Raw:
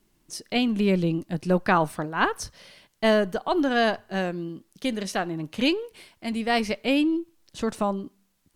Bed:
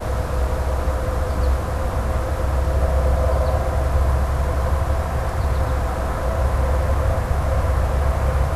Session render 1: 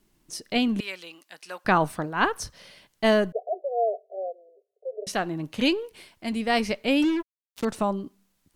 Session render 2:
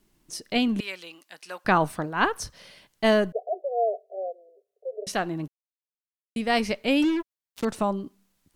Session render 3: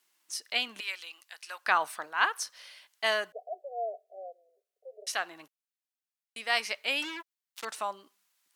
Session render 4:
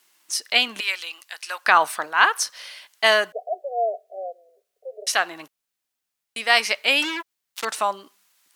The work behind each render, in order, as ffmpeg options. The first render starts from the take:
ffmpeg -i in.wav -filter_complex "[0:a]asettb=1/sr,asplit=3[link_01][link_02][link_03];[link_01]atrim=end=0.804[link_04];[link_02]atrim=start=0.8:end=1.65,asetpts=PTS-STARTPTS,afade=type=in:duration=0.004:curve=qsin,afade=type=out:start_time=0.846:duration=0.004:curve=qsin,highpass=1300[link_05];[link_03]atrim=start=1.646[link_06];[link_04][link_05]acrossfade=duration=0.004:curve1=hsin:curve2=qsin[link_07];[link_07][link_06]acrossfade=duration=0.004:curve1=qsin:curve2=hsin,asettb=1/sr,asplit=3[link_08][link_09][link_10];[link_08]atrim=end=3.324[link_11];[link_09]atrim=start=3.32:end=5.07,asetpts=PTS-STARTPTS,afade=type=in:duration=0.004:curve=qsin,afade=type=out:start_time=1.746:duration=0.004:curve=qsin,asuperpass=centerf=540:order=20:qfactor=1.6[link_12];[link_10]atrim=start=5.066[link_13];[link_11][link_12]acrossfade=duration=0.004:curve1=hsin:curve2=qsin[link_14];[link_14][link_13]acrossfade=duration=0.004:curve1=qsin:curve2=hsin,asettb=1/sr,asplit=3[link_15][link_16][link_17];[link_15]atrim=end=7.024[link_18];[link_16]atrim=start=7.02:end=7.65,asetpts=PTS-STARTPTS,afade=type=in:duration=0.004:curve=qsin,afade=type=out:start_time=0.626:duration=0.004:curve=qsin,acrusher=bits=4:mix=0:aa=0.5[link_19];[link_17]atrim=start=7.646[link_20];[link_18][link_19]acrossfade=duration=0.004:curve1=hsin:curve2=qsin[link_21];[link_21][link_20]acrossfade=duration=0.004:curve1=qsin:curve2=hsin" out.wav
ffmpeg -i in.wav -filter_complex "[0:a]asplit=3[link_01][link_02][link_03];[link_01]atrim=end=5.48,asetpts=PTS-STARTPTS,afade=type=out:start_time=5.476:duration=0.004:curve=hsin[link_04];[link_02]atrim=start=5.48:end=6.36,asetpts=PTS-STARTPTS,volume=0[link_05];[link_03]atrim=start=6.36,asetpts=PTS-STARTPTS,afade=type=in:duration=0.004:curve=hsin[link_06];[link_04][link_05][link_06]concat=n=3:v=0:a=1" out.wav
ffmpeg -i in.wav -af "highpass=1100" out.wav
ffmpeg -i in.wav -af "volume=11dB,alimiter=limit=-3dB:level=0:latency=1" out.wav

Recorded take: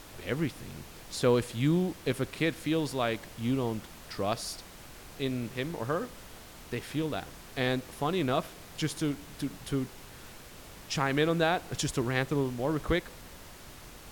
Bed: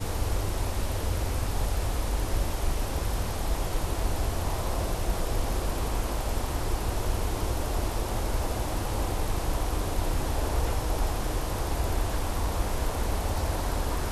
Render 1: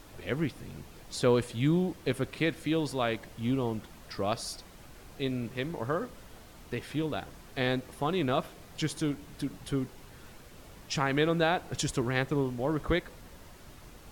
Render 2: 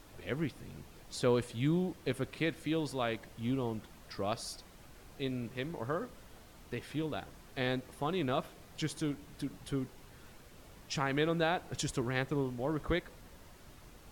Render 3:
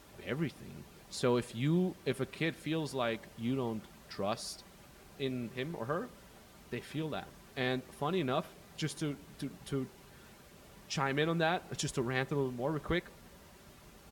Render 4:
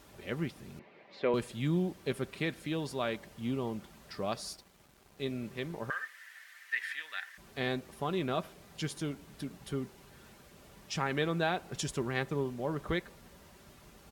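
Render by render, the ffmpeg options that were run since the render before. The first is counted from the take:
ffmpeg -i in.wav -af "afftdn=noise_reduction=6:noise_floor=-49" out.wav
ffmpeg -i in.wav -af "volume=-4.5dB" out.wav
ffmpeg -i in.wav -af "highpass=53,aecho=1:1:5.1:0.32" out.wav
ffmpeg -i in.wav -filter_complex "[0:a]asettb=1/sr,asplit=3[link_01][link_02][link_03];[link_01]atrim=end=0.794[link_04];[link_02]atrim=start=0.79:end=1.34,asetpts=PTS-STARTPTS,afade=type=in:duration=0.004:curve=qsin,afade=type=out:start_time=0.546:duration=0.004:curve=qsin,highpass=280,equalizer=frequency=590:width_type=q:width=4:gain=6,equalizer=frequency=1400:width_type=q:width=4:gain=-4,equalizer=frequency=2100:width_type=q:width=4:gain=8,equalizer=frequency=3300:width_type=q:width=4:gain=-4,lowpass=frequency=3300:width=0.5412,lowpass=frequency=3300:width=1.3066[link_05];[link_03]atrim=start=1.336[link_06];[link_04][link_05]acrossfade=duration=0.004:curve1=hsin:curve2=qsin[link_07];[link_07][link_06]acrossfade=duration=0.004:curve1=qsin:curve2=hsin,asettb=1/sr,asplit=3[link_08][link_09][link_10];[link_08]atrim=end=4.534[link_11];[link_09]atrim=start=4.53:end=5.24,asetpts=PTS-STARTPTS,afade=type=in:duration=0.004:curve=qsin,afade=type=out:start_time=0.706:duration=0.004:curve=qsin,aeval=exprs='sgn(val(0))*max(abs(val(0))-0.00119,0)':channel_layout=same[link_12];[link_10]atrim=start=5.236[link_13];[link_11][link_12]acrossfade=duration=0.004:curve1=hsin:curve2=qsin[link_14];[link_14][link_13]acrossfade=duration=0.004:curve1=qsin:curve2=hsin,asettb=1/sr,asplit=3[link_15][link_16][link_17];[link_15]atrim=end=5.904[link_18];[link_16]atrim=start=5.9:end=7.38,asetpts=PTS-STARTPTS,afade=type=in:duration=0.004:curve=qsin,afade=type=out:start_time=1.476:duration=0.004:curve=qsin,highpass=frequency=1800:width_type=q:width=9.8[link_19];[link_17]atrim=start=7.376[link_20];[link_18][link_19]acrossfade=duration=0.004:curve1=hsin:curve2=qsin[link_21];[link_21][link_20]acrossfade=duration=0.004:curve1=qsin:curve2=hsin" out.wav

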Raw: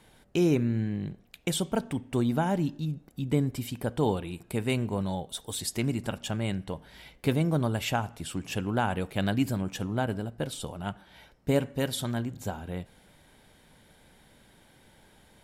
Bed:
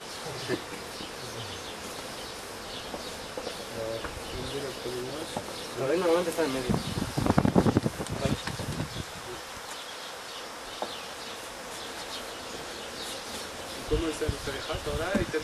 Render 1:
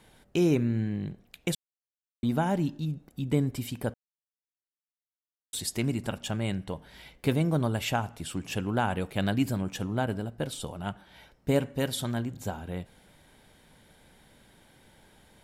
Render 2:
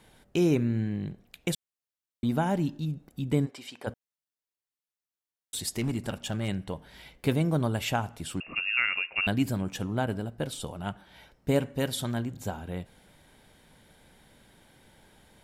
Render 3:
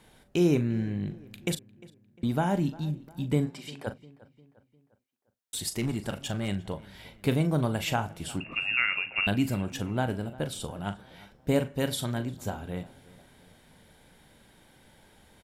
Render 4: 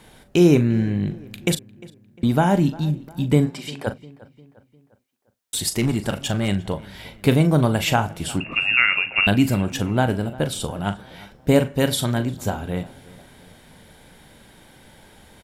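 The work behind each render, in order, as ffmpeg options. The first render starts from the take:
ffmpeg -i in.wav -filter_complex "[0:a]asplit=5[link_01][link_02][link_03][link_04][link_05];[link_01]atrim=end=1.55,asetpts=PTS-STARTPTS,afade=type=out:start_time=1.546:duration=0.004:curve=hsin[link_06];[link_02]atrim=start=1.55:end=2.23,asetpts=PTS-STARTPTS,volume=0[link_07];[link_03]atrim=start=2.23:end=3.94,asetpts=PTS-STARTPTS,afade=type=in:duration=0.004:curve=hsin,afade=type=out:start_time=1.706:duration=0.004:curve=hsin[link_08];[link_04]atrim=start=3.94:end=5.53,asetpts=PTS-STARTPTS,volume=0[link_09];[link_05]atrim=start=5.53,asetpts=PTS-STARTPTS,afade=type=in:duration=0.004:curve=hsin[link_10];[link_06][link_07][link_08][link_09][link_10]concat=n=5:v=0:a=1" out.wav
ffmpeg -i in.wav -filter_complex "[0:a]asplit=3[link_01][link_02][link_03];[link_01]afade=type=out:start_time=3.45:duration=0.02[link_04];[link_02]highpass=520,lowpass=6000,afade=type=in:start_time=3.45:duration=0.02,afade=type=out:start_time=3.86:duration=0.02[link_05];[link_03]afade=type=in:start_time=3.86:duration=0.02[link_06];[link_04][link_05][link_06]amix=inputs=3:normalize=0,asettb=1/sr,asplit=3[link_07][link_08][link_09];[link_07]atrim=end=5.564[link_10];[link_08]atrim=start=5.56:end=6.48,asetpts=PTS-STARTPTS,afade=type=in:duration=0.004:curve=qsin,afade=type=out:start_time=0.916:duration=0.004:curve=qsin,asoftclip=type=hard:threshold=-23dB[link_11];[link_09]atrim=start=6.476[link_12];[link_10][link_11]acrossfade=duration=0.004:curve1=hsin:curve2=qsin[link_13];[link_13][link_12]acrossfade=duration=0.004:curve1=qsin:curve2=hsin,asettb=1/sr,asplit=3[link_14][link_15][link_16];[link_14]atrim=end=8.404[link_17];[link_15]atrim=start=8.4:end=9.27,asetpts=PTS-STARTPTS,afade=type=in:duration=0.004:curve=qsin,afade=type=out:start_time=0.866:duration=0.004:curve=qsin,lowpass=frequency=2500:width_type=q:width=0.5098,lowpass=frequency=2500:width_type=q:width=0.6013,lowpass=frequency=2500:width_type=q:width=0.9,lowpass=frequency=2500:width_type=q:width=2.563,afreqshift=-2900[link_18];[link_16]atrim=start=9.266[link_19];[link_17][link_18]acrossfade=duration=0.004:curve1=hsin:curve2=qsin[link_20];[link_20][link_19]acrossfade=duration=0.004:curve1=qsin:curve2=hsin" out.wav
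ffmpeg -i in.wav -filter_complex "[0:a]asplit=2[link_01][link_02];[link_02]adelay=40,volume=-11dB[link_03];[link_01][link_03]amix=inputs=2:normalize=0,asplit=2[link_04][link_05];[link_05]adelay=352,lowpass=frequency=3000:poles=1,volume=-20.5dB,asplit=2[link_06][link_07];[link_07]adelay=352,lowpass=frequency=3000:poles=1,volume=0.49,asplit=2[link_08][link_09];[link_09]adelay=352,lowpass=frequency=3000:poles=1,volume=0.49,asplit=2[link_10][link_11];[link_11]adelay=352,lowpass=frequency=3000:poles=1,volume=0.49[link_12];[link_04][link_06][link_08][link_10][link_12]amix=inputs=5:normalize=0" out.wav
ffmpeg -i in.wav -af "volume=9dB" out.wav

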